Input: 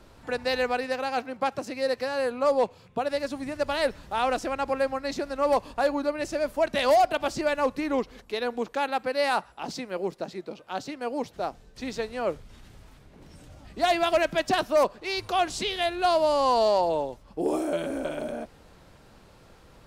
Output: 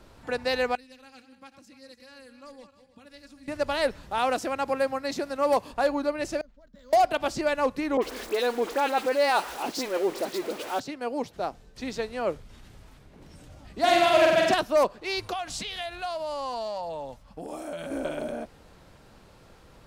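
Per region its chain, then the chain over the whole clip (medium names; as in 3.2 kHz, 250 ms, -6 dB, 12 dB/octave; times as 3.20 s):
0.75–3.48 s: backward echo that repeats 151 ms, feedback 52%, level -11 dB + amplifier tone stack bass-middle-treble 6-0-2 + comb 3.6 ms
4.18–5.72 s: high-pass 80 Hz + treble shelf 11 kHz +8.5 dB
6.41–6.93 s: amplifier tone stack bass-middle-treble 10-0-1 + static phaser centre 510 Hz, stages 8 + decimation joined by straight lines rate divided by 4×
7.97–10.80 s: jump at every zero crossing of -32.5 dBFS + resonant low shelf 220 Hz -11.5 dB, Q 1.5 + phase dispersion highs, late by 52 ms, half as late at 2.3 kHz
13.79–14.54 s: high-pass 78 Hz + flutter echo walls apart 8 m, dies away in 1.3 s
15.33–17.91 s: band-stop 990 Hz, Q 27 + compression 4:1, threshold -29 dBFS + peaking EQ 370 Hz -14 dB 0.48 oct
whole clip: none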